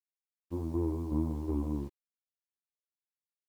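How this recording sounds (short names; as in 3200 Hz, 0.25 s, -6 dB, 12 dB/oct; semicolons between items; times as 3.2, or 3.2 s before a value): tremolo saw down 2.7 Hz, depth 60%; a quantiser's noise floor 10-bit, dither none; a shimmering, thickened sound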